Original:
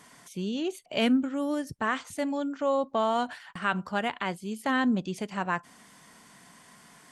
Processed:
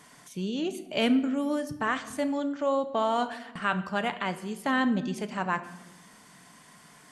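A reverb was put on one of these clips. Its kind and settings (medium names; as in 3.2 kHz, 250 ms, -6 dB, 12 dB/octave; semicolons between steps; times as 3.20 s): simulated room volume 550 m³, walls mixed, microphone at 0.42 m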